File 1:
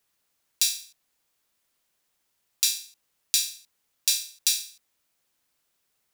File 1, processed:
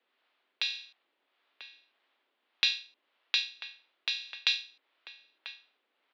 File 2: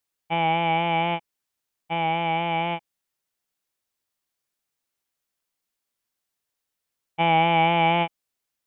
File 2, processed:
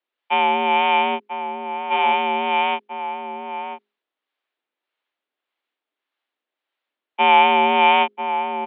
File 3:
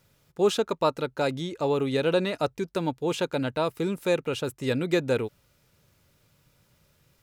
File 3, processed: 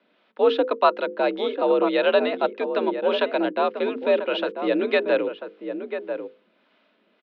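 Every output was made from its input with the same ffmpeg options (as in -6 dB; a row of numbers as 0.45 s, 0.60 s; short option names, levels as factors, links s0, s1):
-filter_complex "[0:a]bandreject=f=50:t=h:w=6,bandreject=f=100:t=h:w=6,bandreject=f=150:t=h:w=6,bandreject=f=200:t=h:w=6,bandreject=f=250:t=h:w=6,bandreject=f=300:t=h:w=6,bandreject=f=350:t=h:w=6,bandreject=f=400:t=h:w=6,bandreject=f=450:t=h:w=6,aeval=exprs='(mod(1.5*val(0)+1,2)-1)/1.5':c=same,acrossover=split=500[s0][s1];[s0]aeval=exprs='val(0)*(1-0.5/2+0.5/2*cos(2*PI*1.7*n/s))':c=same[s2];[s1]aeval=exprs='val(0)*(1-0.5/2-0.5/2*cos(2*PI*1.7*n/s))':c=same[s3];[s2][s3]amix=inputs=2:normalize=0,asplit=2[s4][s5];[s5]adelay=991.3,volume=0.398,highshelf=f=4000:g=-22.3[s6];[s4][s6]amix=inputs=2:normalize=0,highpass=f=200:t=q:w=0.5412,highpass=f=200:t=q:w=1.307,lowpass=f=3600:t=q:w=0.5176,lowpass=f=3600:t=q:w=0.7071,lowpass=f=3600:t=q:w=1.932,afreqshift=61,volume=2.37"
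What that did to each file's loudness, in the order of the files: -6.0 LU, +4.5 LU, +4.0 LU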